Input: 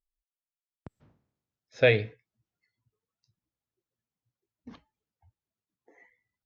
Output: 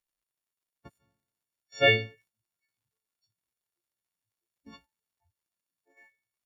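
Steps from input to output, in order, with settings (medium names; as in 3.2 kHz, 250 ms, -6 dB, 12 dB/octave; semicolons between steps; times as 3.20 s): partials quantised in pitch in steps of 4 st; crackle 170 per s -63 dBFS; gate -57 dBFS, range -8 dB; trim -3 dB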